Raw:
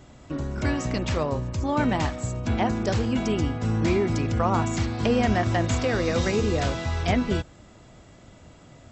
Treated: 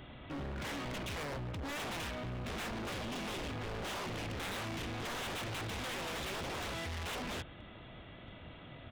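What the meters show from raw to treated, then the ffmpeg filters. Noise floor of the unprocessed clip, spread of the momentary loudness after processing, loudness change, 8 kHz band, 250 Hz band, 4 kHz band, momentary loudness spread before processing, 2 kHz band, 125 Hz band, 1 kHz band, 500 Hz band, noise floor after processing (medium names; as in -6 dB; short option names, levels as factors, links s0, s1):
-50 dBFS, 13 LU, -14.5 dB, -9.0 dB, -18.0 dB, -5.5 dB, 5 LU, -8.5 dB, -17.5 dB, -13.5 dB, -16.5 dB, -52 dBFS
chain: -af "aresample=8000,aeval=exprs='0.0562*(abs(mod(val(0)/0.0562+3,4)-2)-1)':c=same,aresample=44100,highshelf=f=2100:g=11,asoftclip=type=hard:threshold=0.015,volume=0.75"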